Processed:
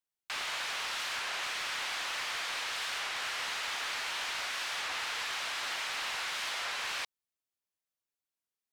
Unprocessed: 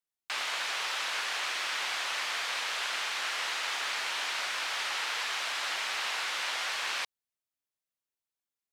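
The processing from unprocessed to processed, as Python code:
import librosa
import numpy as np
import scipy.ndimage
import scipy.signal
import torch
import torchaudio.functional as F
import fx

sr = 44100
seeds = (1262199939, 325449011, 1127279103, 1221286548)

y = np.clip(x, -10.0 ** (-29.0 / 20.0), 10.0 ** (-29.0 / 20.0))
y = fx.record_warp(y, sr, rpm=33.33, depth_cents=160.0)
y = y * librosa.db_to_amplitude(-2.0)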